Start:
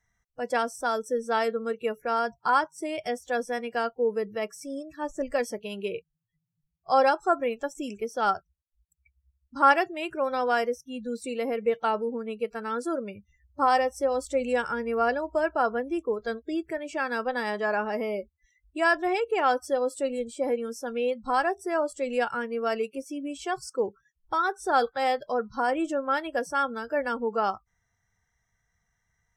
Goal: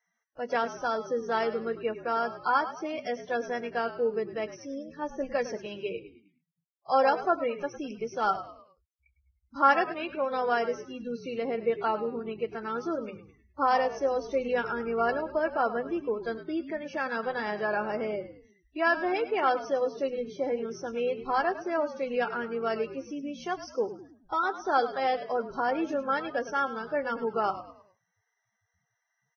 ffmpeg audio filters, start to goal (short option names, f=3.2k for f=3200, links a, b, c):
-filter_complex "[0:a]highshelf=f=3.4k:g=-4.5,bandreject=f=50:t=h:w=6,bandreject=f=100:t=h:w=6,bandreject=f=150:t=h:w=6,bandreject=f=200:t=h:w=6,bandreject=f=250:t=h:w=6,asplit=2[a][b];[b]asplit=4[c][d][e][f];[c]adelay=104,afreqshift=-54,volume=-13dB[g];[d]adelay=208,afreqshift=-108,volume=-21dB[h];[e]adelay=312,afreqshift=-162,volume=-28.9dB[i];[f]adelay=416,afreqshift=-216,volume=-36.9dB[j];[g][h][i][j]amix=inputs=4:normalize=0[k];[a][k]amix=inputs=2:normalize=0,volume=-2dB" -ar 16000 -c:a libvorbis -b:a 16k